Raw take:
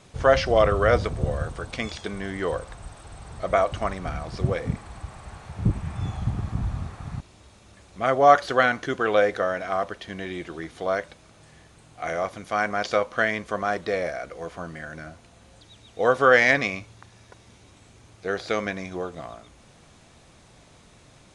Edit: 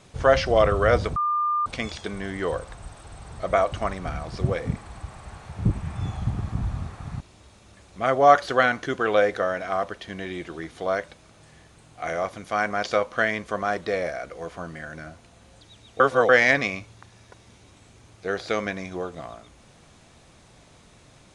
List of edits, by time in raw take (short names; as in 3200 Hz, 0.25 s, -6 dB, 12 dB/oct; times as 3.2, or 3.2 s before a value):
1.16–1.66 bleep 1200 Hz -20.5 dBFS
16–16.29 reverse